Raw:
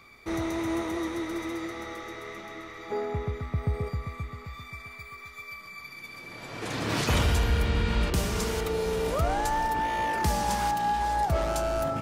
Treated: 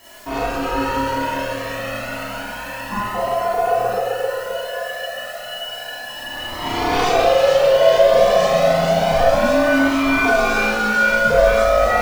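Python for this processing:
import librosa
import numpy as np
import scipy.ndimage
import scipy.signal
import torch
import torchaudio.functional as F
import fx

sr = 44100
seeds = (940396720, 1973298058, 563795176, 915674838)

p1 = scipy.signal.sosfilt(scipy.signal.butter(2, 5200.0, 'lowpass', fs=sr, output='sos'), x)
p2 = fx.low_shelf(p1, sr, hz=130.0, db=11.5)
p3 = fx.over_compress(p2, sr, threshold_db=-25.0, ratio=-1.0)
p4 = p2 + (p3 * librosa.db_to_amplitude(-2.5))
p5 = fx.quant_dither(p4, sr, seeds[0], bits=8, dither='triangular')
p6 = p5 * np.sin(2.0 * np.pi * 610.0 * np.arange(len(p5)) / sr)
p7 = fx.echo_wet_highpass(p6, sr, ms=446, feedback_pct=76, hz=1500.0, wet_db=-3.5)
p8 = fx.rev_schroeder(p7, sr, rt60_s=0.48, comb_ms=26, drr_db=-6.0)
p9 = fx.comb_cascade(p8, sr, direction='rising', hz=0.3)
y = p9 * librosa.db_to_amplitude(3.0)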